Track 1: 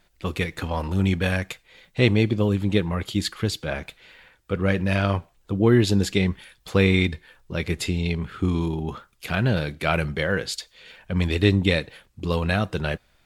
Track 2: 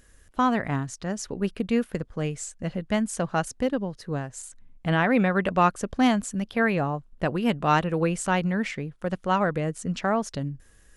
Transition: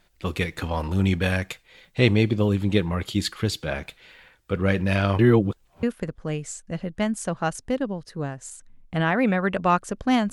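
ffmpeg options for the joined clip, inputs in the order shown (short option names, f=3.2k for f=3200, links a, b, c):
-filter_complex "[0:a]apad=whole_dur=10.32,atrim=end=10.32,asplit=2[a][b];[a]atrim=end=5.192[c];[b]atrim=start=5.188:end=5.832,asetpts=PTS-STARTPTS,areverse[d];[1:a]atrim=start=1.748:end=6.24[e];[c][d]acrossfade=d=0.004:c1=hsin:c2=hsin[f];[f][e]acrossfade=d=0.004:c1=hsin:c2=hsin"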